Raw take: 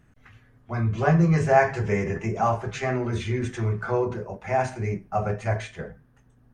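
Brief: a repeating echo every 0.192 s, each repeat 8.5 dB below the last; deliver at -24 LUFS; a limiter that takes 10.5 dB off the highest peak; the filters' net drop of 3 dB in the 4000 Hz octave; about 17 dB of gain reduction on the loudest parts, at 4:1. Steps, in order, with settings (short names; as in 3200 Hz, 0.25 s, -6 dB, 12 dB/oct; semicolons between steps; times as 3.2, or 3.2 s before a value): bell 4000 Hz -4 dB; compressor 4:1, threshold -35 dBFS; limiter -33 dBFS; feedback echo 0.192 s, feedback 38%, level -8.5 dB; gain +17 dB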